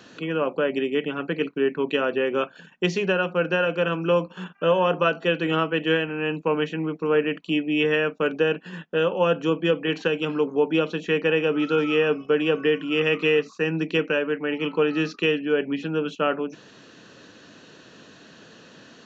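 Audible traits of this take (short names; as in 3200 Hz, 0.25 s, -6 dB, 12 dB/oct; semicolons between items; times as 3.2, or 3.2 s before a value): noise floor -50 dBFS; spectral tilt -3.5 dB/oct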